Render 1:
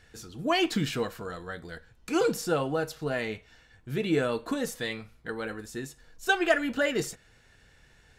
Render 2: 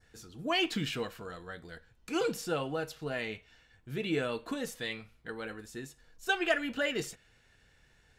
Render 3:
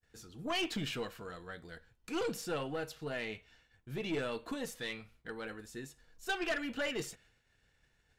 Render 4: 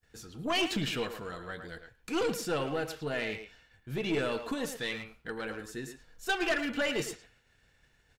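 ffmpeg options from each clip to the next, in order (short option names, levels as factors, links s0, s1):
-af "adynamicequalizer=threshold=0.00562:dfrequency=2800:dqfactor=1.5:tfrequency=2800:tqfactor=1.5:attack=5:release=100:ratio=0.375:range=3:mode=boostabove:tftype=bell,volume=0.501"
-af "aeval=exprs='(tanh(22.4*val(0)+0.3)-tanh(0.3))/22.4':c=same,agate=range=0.0224:threshold=0.00112:ratio=3:detection=peak,volume=0.841"
-filter_complex "[0:a]asplit=2[s0][s1];[s1]adelay=110,highpass=300,lowpass=3400,asoftclip=type=hard:threshold=0.0168,volume=0.447[s2];[s0][s2]amix=inputs=2:normalize=0,volume=1.78"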